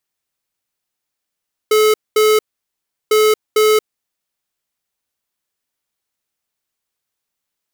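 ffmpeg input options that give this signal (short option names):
-f lavfi -i "aevalsrc='0.266*(2*lt(mod(430*t,1),0.5)-1)*clip(min(mod(mod(t,1.4),0.45),0.23-mod(mod(t,1.4),0.45))/0.005,0,1)*lt(mod(t,1.4),0.9)':d=2.8:s=44100"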